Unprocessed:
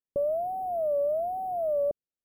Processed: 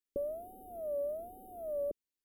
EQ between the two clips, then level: peaking EQ 760 Hz -6.5 dB 1.3 oct; static phaser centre 340 Hz, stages 4; band-stop 1 kHz, Q 22; +1.5 dB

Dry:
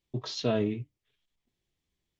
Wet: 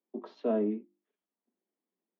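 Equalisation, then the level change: steep high-pass 190 Hz 96 dB/octave; low-pass 1 kHz 12 dB/octave; hum notches 50/100/150/200/250/300/350 Hz; 0.0 dB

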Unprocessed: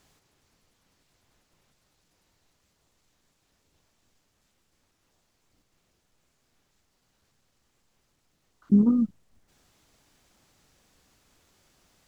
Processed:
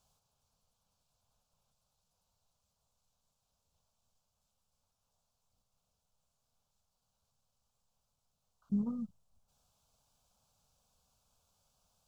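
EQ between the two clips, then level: static phaser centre 800 Hz, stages 4; -8.5 dB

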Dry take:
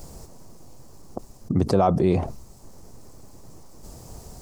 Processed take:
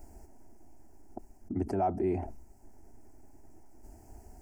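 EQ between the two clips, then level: treble shelf 2.2 kHz -8 dB; static phaser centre 760 Hz, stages 8; -6.5 dB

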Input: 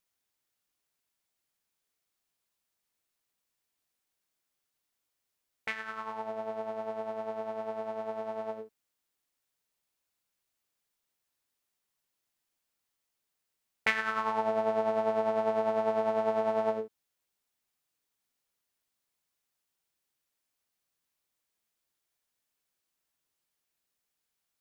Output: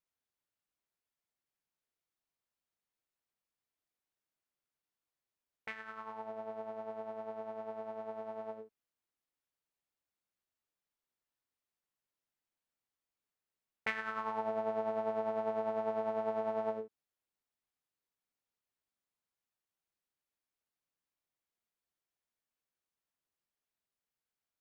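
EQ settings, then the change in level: treble shelf 3.1 kHz -8.5 dB; -6.0 dB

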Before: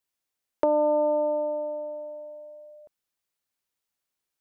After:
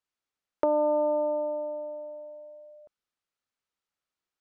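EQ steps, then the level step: distance through air 71 m; peaking EQ 1.3 kHz +5 dB 0.31 oct; -2.0 dB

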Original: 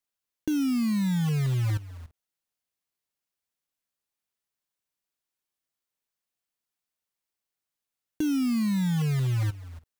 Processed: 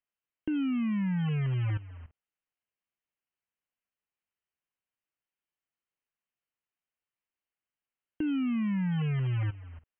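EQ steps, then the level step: brick-wall FIR low-pass 3.2 kHz; distance through air 290 m; treble shelf 2.5 kHz +12 dB; -3.5 dB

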